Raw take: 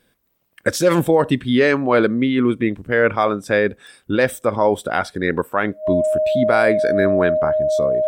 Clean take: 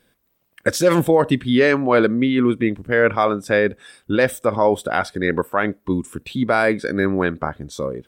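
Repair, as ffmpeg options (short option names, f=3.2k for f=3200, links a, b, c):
-af "adeclick=t=4,bandreject=f=620:w=30"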